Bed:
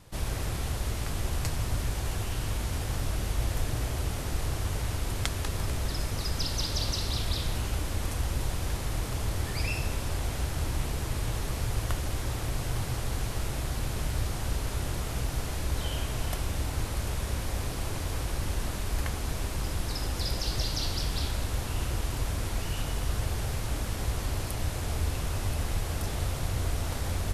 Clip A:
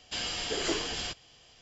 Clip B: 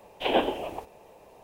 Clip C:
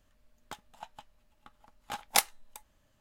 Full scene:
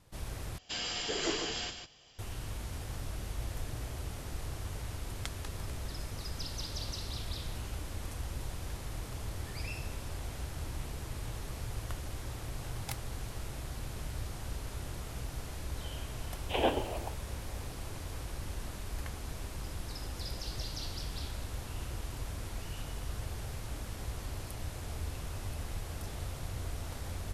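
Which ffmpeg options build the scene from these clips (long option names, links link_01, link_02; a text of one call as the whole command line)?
ffmpeg -i bed.wav -i cue0.wav -i cue1.wav -i cue2.wav -filter_complex "[0:a]volume=-9dB[link_01];[1:a]aecho=1:1:149:0.422[link_02];[link_01]asplit=2[link_03][link_04];[link_03]atrim=end=0.584[link_05];[link_02]atrim=end=1.61,asetpts=PTS-STARTPTS,volume=-3dB[link_06];[link_04]atrim=start=2.186[link_07];[3:a]atrim=end=3,asetpts=PTS-STARTPTS,volume=-18dB,afade=type=in:duration=0.004:curve=hsin,afade=type=out:start_time=2.996:duration=0.004:curve=hsin,adelay=10730[link_08];[2:a]atrim=end=1.43,asetpts=PTS-STARTPTS,volume=-5.5dB,afade=type=in:duration=0.004:curve=hsin,afade=type=out:start_time=1.426:duration=0.004:curve=hsin,adelay=16290[link_09];[link_05][link_06]acrossfade=duration=0.004:curve1=hsin:curve2=hsin[link_10];[link_10][link_07]acrossfade=duration=0.004:curve1=hsin:curve2=hsin[link_11];[link_11][link_08][link_09]amix=inputs=3:normalize=0" out.wav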